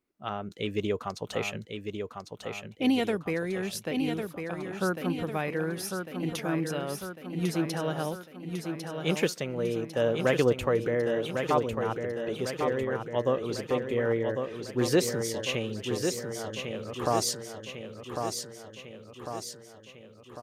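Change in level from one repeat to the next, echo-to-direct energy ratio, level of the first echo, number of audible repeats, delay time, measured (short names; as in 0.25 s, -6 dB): -5.0 dB, -4.5 dB, -6.0 dB, 6, 1.1 s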